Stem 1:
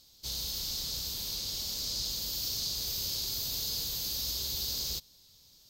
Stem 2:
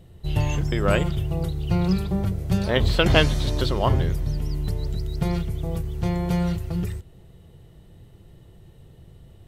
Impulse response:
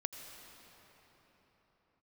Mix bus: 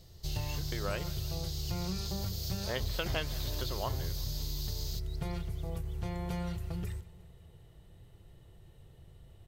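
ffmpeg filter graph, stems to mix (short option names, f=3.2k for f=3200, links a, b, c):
-filter_complex "[0:a]volume=-5dB[a];[1:a]volume=-5.5dB,asplit=2[b][c];[c]volume=-23.5dB,aecho=0:1:178|356|534|712|890|1068|1246|1424|1602:1|0.59|0.348|0.205|0.121|0.0715|0.0422|0.0249|0.0147[d];[a][b][d]amix=inputs=3:normalize=0,equalizer=f=230:t=o:w=1.6:g=-6.5,acompressor=threshold=-33dB:ratio=3"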